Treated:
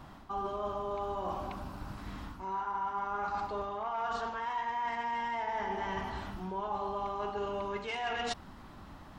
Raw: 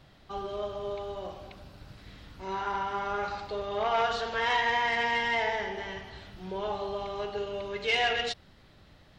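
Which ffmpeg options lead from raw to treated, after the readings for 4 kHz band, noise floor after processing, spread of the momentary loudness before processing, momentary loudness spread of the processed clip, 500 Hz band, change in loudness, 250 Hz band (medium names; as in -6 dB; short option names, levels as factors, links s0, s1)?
-11.5 dB, -51 dBFS, 19 LU, 9 LU, -5.5 dB, -6.0 dB, 0.0 dB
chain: -af "equalizer=f=125:t=o:w=1:g=-5,equalizer=f=250:t=o:w=1:g=6,equalizer=f=500:t=o:w=1:g=-8,equalizer=f=1000:t=o:w=1:g=10,equalizer=f=2000:t=o:w=1:g=-5,equalizer=f=4000:t=o:w=1:g=-9,areverse,acompressor=threshold=0.0112:ratio=16,areverse,volume=2.24"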